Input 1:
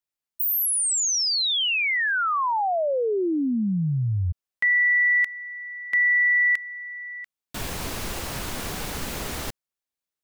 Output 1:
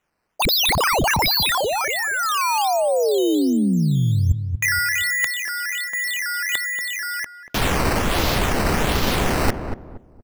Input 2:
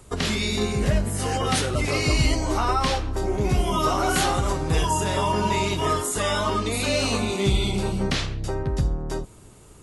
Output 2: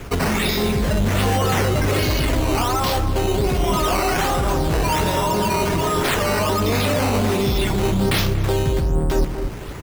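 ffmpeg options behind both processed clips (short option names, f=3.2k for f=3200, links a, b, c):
-filter_complex "[0:a]apsyclip=21dB,areverse,acompressor=threshold=-13dB:ratio=12:attack=50:release=204:knee=1:detection=peak,areverse,adynamicequalizer=threshold=0.0447:dfrequency=2000:dqfactor=1.1:tfrequency=2000:tqfactor=1.1:attack=5:release=100:ratio=0.4:range=3:mode=cutabove:tftype=bell,acrusher=samples=9:mix=1:aa=0.000001:lfo=1:lforange=9:lforate=1.3,asplit=2[a][b];[b]adelay=235,lowpass=f=870:p=1,volume=-7dB,asplit=2[c][d];[d]adelay=235,lowpass=f=870:p=1,volume=0.32,asplit=2[e][f];[f]adelay=235,lowpass=f=870:p=1,volume=0.32,asplit=2[g][h];[h]adelay=235,lowpass=f=870:p=1,volume=0.32[i];[a][c][e][g][i]amix=inputs=5:normalize=0,volume=-5.5dB"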